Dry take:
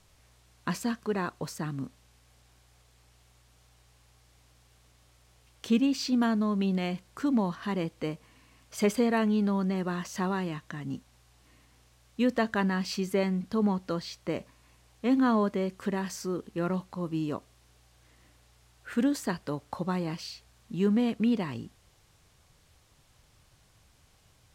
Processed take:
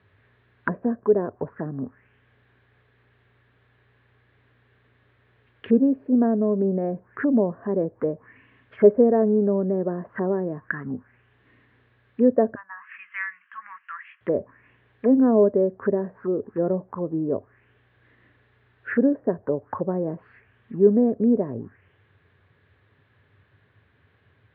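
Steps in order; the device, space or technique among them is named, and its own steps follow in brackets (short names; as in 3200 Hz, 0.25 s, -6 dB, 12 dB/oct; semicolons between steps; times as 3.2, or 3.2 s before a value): 12.55–14.21 elliptic band-pass 1100–2800 Hz, stop band 50 dB; envelope filter bass rig (envelope low-pass 610–4100 Hz down, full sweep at -30 dBFS; speaker cabinet 80–2200 Hz, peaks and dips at 98 Hz +10 dB, 250 Hz +5 dB, 410 Hz +9 dB, 780 Hz -4 dB, 1700 Hz +10 dB)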